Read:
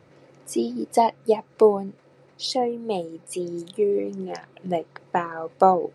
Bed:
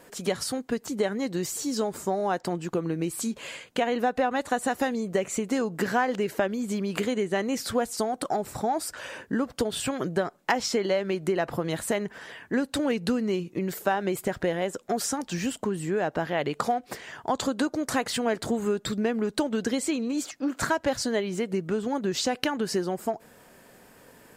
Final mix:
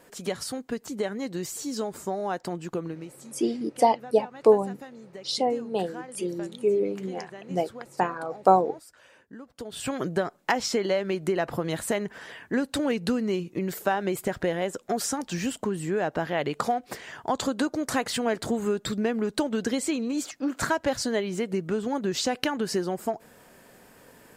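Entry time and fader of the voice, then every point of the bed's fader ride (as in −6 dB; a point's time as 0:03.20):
2.85 s, −1.5 dB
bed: 0:02.83 −3 dB
0:03.19 −17 dB
0:09.49 −17 dB
0:09.92 0 dB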